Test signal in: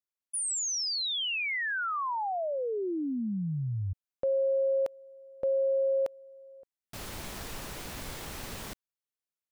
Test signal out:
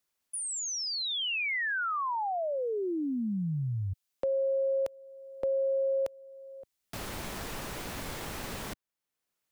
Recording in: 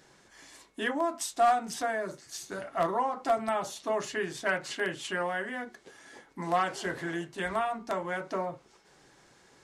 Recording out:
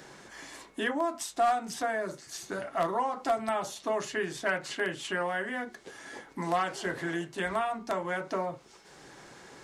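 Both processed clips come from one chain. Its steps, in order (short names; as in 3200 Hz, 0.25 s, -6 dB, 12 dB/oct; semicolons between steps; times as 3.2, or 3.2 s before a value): three-band squash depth 40%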